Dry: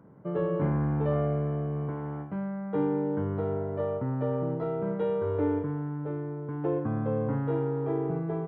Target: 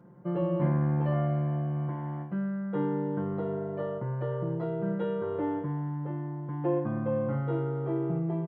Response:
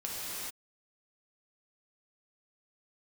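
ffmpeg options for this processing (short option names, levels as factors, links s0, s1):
-af "aecho=1:1:5.7:0.92,volume=0.708"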